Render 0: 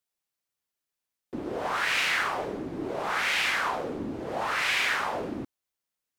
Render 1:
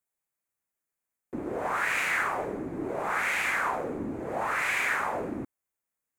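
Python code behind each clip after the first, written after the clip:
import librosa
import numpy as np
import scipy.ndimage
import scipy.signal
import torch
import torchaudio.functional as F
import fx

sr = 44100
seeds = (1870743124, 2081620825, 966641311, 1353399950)

y = fx.band_shelf(x, sr, hz=4000.0, db=-11.5, octaves=1.2)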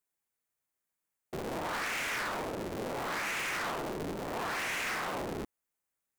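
y = fx.cycle_switch(x, sr, every=3, mode='inverted')
y = 10.0 ** (-32.0 / 20.0) * np.tanh(y / 10.0 ** (-32.0 / 20.0))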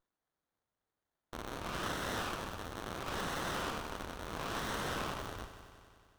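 y = scipy.signal.sosfilt(scipy.signal.cheby2(4, 40, [170.0, 640.0], 'bandstop', fs=sr, output='sos'), x)
y = fx.echo_heads(y, sr, ms=92, heads='first and second', feedback_pct=66, wet_db=-14.0)
y = fx.running_max(y, sr, window=17)
y = y * librosa.db_to_amplitude(1.0)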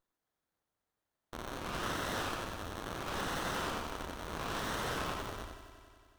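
y = x + 10.0 ** (-5.5 / 20.0) * np.pad(x, (int(89 * sr / 1000.0), 0))[:len(x)]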